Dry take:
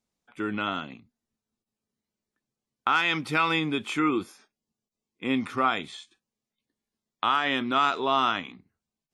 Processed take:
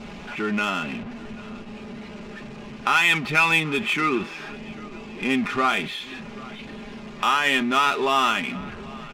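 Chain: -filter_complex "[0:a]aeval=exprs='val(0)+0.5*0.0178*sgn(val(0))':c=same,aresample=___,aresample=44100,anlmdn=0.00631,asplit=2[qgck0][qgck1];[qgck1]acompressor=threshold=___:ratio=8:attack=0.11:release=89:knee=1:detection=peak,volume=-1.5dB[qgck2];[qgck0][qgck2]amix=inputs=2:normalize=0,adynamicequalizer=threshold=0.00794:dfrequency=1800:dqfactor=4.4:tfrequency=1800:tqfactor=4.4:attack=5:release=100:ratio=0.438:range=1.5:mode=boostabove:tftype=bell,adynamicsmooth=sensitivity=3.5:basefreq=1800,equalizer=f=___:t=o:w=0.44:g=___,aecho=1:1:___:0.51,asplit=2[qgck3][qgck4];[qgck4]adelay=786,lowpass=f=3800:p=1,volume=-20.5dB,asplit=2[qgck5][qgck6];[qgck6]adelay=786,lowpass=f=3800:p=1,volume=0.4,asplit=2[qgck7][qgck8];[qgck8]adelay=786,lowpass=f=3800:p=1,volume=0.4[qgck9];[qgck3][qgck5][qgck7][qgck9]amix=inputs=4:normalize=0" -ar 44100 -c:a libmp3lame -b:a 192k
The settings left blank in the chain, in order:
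22050, -32dB, 2600, 7.5, 4.9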